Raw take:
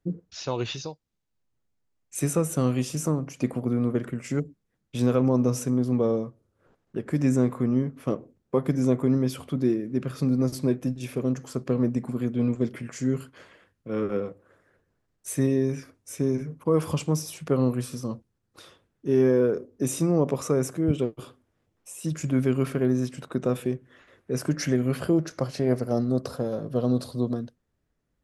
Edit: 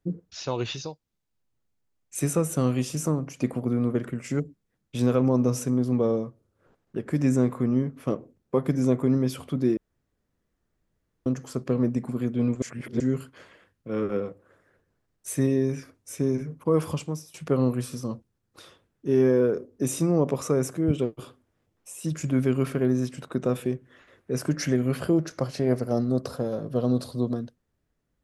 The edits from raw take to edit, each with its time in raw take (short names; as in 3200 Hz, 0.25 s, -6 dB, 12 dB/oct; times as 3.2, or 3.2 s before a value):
9.77–11.26 room tone
12.62–13 reverse
16.79–17.34 fade out, to -19 dB